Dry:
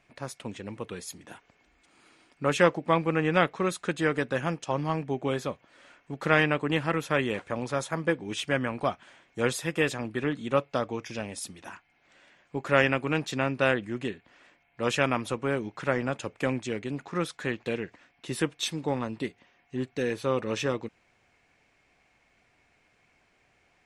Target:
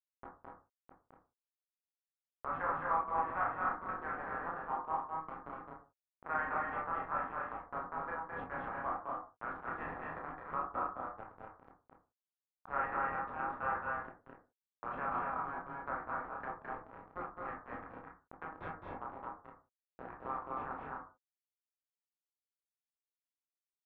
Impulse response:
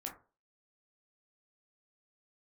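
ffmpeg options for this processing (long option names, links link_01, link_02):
-filter_complex "[0:a]highpass=frequency=930:width=0.5412,highpass=frequency=930:width=1.3066,asplit=2[link_01][link_02];[link_02]adelay=37,volume=-5.5dB[link_03];[link_01][link_03]amix=inputs=2:normalize=0,aresample=16000,acrusher=bits=4:mix=0:aa=0.000001,aresample=44100,lowpass=frequency=1200:width=0.5412,lowpass=frequency=1200:width=1.3066[link_04];[1:a]atrim=start_sample=2205,afade=type=out:start_time=0.24:duration=0.01,atrim=end_sample=11025[link_05];[link_04][link_05]afir=irnorm=-1:irlink=0,asplit=2[link_06][link_07];[link_07]acompressor=threshold=-49dB:ratio=6,volume=2.5dB[link_08];[link_06][link_08]amix=inputs=2:normalize=0,aecho=1:1:212.8|244.9:0.631|0.631,volume=-3.5dB"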